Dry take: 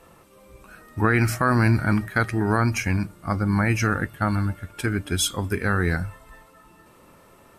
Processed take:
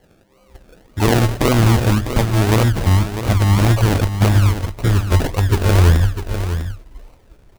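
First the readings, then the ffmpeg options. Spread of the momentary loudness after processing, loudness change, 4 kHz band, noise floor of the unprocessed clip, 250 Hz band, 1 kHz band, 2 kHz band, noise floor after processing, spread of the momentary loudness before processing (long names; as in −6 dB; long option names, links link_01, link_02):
9 LU, +7.0 dB, +6.5 dB, −53 dBFS, +4.5 dB, +3.5 dB, −0.5 dB, −53 dBFS, 8 LU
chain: -filter_complex "[0:a]asubboost=boost=10:cutoff=64,agate=range=-7dB:threshold=-42dB:ratio=16:detection=peak,highshelf=frequency=5200:gain=-7,acrusher=samples=35:mix=1:aa=0.000001:lfo=1:lforange=21:lforate=1.8,asplit=2[link_01][link_02];[link_02]aecho=0:1:650:0.335[link_03];[link_01][link_03]amix=inputs=2:normalize=0,volume=6dB"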